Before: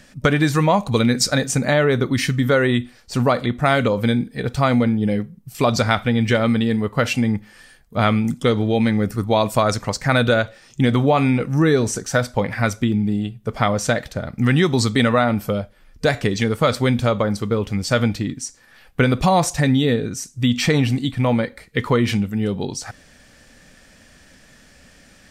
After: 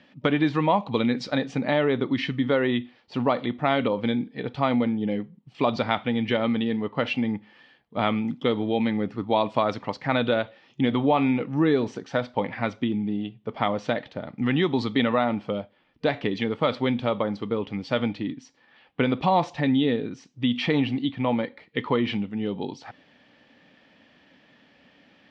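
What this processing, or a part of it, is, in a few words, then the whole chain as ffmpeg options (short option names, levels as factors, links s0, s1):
kitchen radio: -af "highpass=170,equalizer=f=290:t=q:w=4:g=5,equalizer=f=890:t=q:w=4:g=5,equalizer=f=1500:t=q:w=4:g=-5,equalizer=f=3100:t=q:w=4:g=4,lowpass=f=3700:w=0.5412,lowpass=f=3700:w=1.3066,volume=0.501"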